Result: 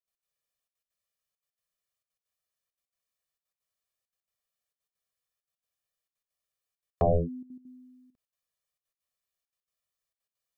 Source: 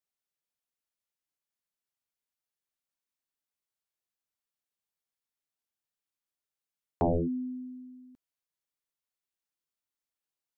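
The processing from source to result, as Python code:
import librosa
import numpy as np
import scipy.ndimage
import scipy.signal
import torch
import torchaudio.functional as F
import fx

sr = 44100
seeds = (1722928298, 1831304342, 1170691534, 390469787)

y = x + 0.96 * np.pad(x, (int(1.7 * sr / 1000.0), 0))[:len(x)]
y = fx.step_gate(y, sr, bpm=200, pattern='.x.xxxxxx', floor_db=-12.0, edge_ms=4.5)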